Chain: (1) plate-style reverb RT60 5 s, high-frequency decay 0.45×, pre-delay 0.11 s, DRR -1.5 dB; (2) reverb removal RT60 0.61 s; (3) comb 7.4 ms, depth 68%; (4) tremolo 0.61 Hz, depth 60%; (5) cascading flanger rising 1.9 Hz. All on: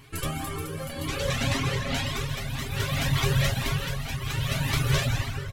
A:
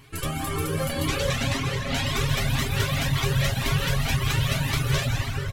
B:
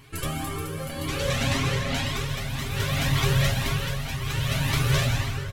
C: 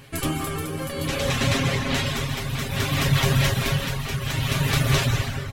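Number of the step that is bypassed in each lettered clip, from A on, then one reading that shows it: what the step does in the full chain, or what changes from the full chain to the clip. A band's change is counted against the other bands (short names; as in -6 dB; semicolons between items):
4, momentary loudness spread change -4 LU; 2, loudness change +1.5 LU; 5, loudness change +4.0 LU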